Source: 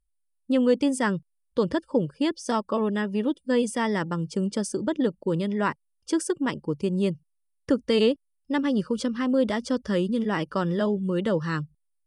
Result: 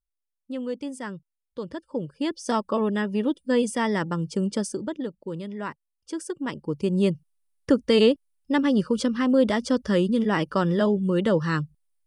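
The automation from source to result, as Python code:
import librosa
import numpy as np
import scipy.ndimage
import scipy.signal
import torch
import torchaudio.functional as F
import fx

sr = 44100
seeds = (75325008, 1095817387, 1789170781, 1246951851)

y = fx.gain(x, sr, db=fx.line((1.69, -10.0), (2.49, 1.0), (4.59, 1.0), (5.06, -7.5), (6.15, -7.5), (6.99, 3.0)))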